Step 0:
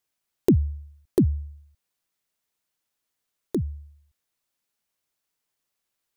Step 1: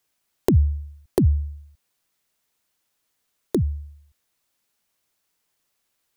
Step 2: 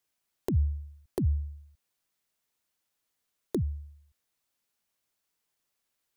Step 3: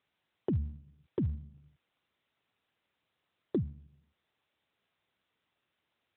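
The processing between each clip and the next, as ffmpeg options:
ffmpeg -i in.wav -filter_complex "[0:a]acrossover=split=120[link_01][link_02];[link_02]acompressor=threshold=-25dB:ratio=6[link_03];[link_01][link_03]amix=inputs=2:normalize=0,volume=7dB" out.wav
ffmpeg -i in.wav -af "alimiter=limit=-10.5dB:level=0:latency=1:release=138,volume=-7dB" out.wav
ffmpeg -i in.wav -ar 8000 -c:a libopencore_amrnb -b:a 12200 out.amr

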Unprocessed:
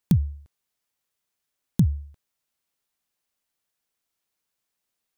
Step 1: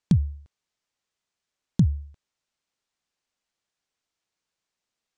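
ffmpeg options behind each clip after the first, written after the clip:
ffmpeg -i in.wav -af "lowpass=frequency=7600:width=0.5412,lowpass=frequency=7600:width=1.3066" out.wav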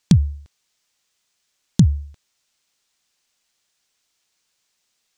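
ffmpeg -i in.wav -af "highshelf=frequency=2200:gain=10.5,volume=6dB" out.wav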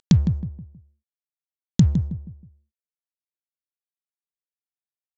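ffmpeg -i in.wav -filter_complex "[0:a]acompressor=mode=upward:threshold=-31dB:ratio=2.5,aresample=16000,aeval=exprs='sgn(val(0))*max(abs(val(0))-0.015,0)':channel_layout=same,aresample=44100,asplit=2[link_01][link_02];[link_02]adelay=159,lowpass=frequency=890:poles=1,volume=-6.5dB,asplit=2[link_03][link_04];[link_04]adelay=159,lowpass=frequency=890:poles=1,volume=0.36,asplit=2[link_05][link_06];[link_06]adelay=159,lowpass=frequency=890:poles=1,volume=0.36,asplit=2[link_07][link_08];[link_08]adelay=159,lowpass=frequency=890:poles=1,volume=0.36[link_09];[link_01][link_03][link_05][link_07][link_09]amix=inputs=5:normalize=0,volume=-2dB" out.wav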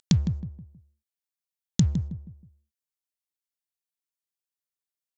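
ffmpeg -i in.wav -af "highshelf=frequency=2700:gain=9,volume=-5.5dB" out.wav

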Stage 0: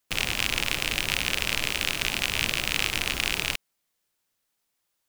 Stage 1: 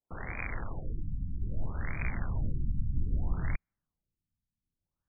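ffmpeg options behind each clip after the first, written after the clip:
ffmpeg -i in.wav -af "asubboost=boost=9.5:cutoff=160,afftfilt=real='re*lt(b*sr/1024,270*pow(2500/270,0.5+0.5*sin(2*PI*0.62*pts/sr)))':imag='im*lt(b*sr/1024,270*pow(2500/270,0.5+0.5*sin(2*PI*0.62*pts/sr)))':win_size=1024:overlap=0.75,volume=-6.5dB" out.wav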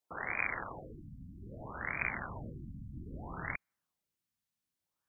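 ffmpeg -i in.wav -af "highpass=frequency=770:poles=1,volume=6dB" out.wav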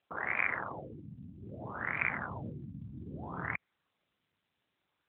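ffmpeg -i in.wav -af "volume=4dB" -ar 8000 -c:a libopencore_amrnb -b:a 12200 out.amr

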